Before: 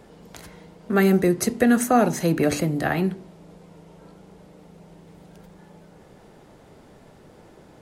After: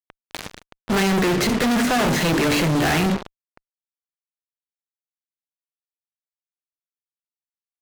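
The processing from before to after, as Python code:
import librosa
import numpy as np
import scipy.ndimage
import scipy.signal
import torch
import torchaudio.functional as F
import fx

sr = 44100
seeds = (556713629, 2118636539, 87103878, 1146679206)

y = fx.law_mismatch(x, sr, coded='A')
y = fx.filter_sweep_lowpass(y, sr, from_hz=3300.0, to_hz=160.0, start_s=3.38, end_s=3.88, q=1.9)
y = fx.room_early_taps(y, sr, ms=(45, 72), db=(-16.5, -17.0))
y = fx.fuzz(y, sr, gain_db=44.0, gate_db=-41.0)
y = y * 10.0 ** (-4.5 / 20.0)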